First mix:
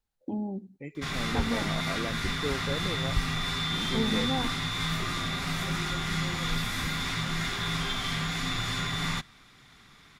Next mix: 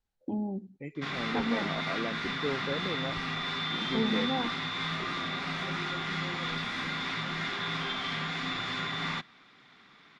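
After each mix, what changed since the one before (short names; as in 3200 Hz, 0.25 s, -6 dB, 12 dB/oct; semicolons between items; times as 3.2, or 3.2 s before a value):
background: add three-band isolator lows -22 dB, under 170 Hz, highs -17 dB, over 5100 Hz; master: add air absorption 51 m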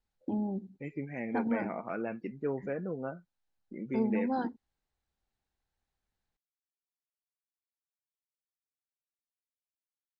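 background: muted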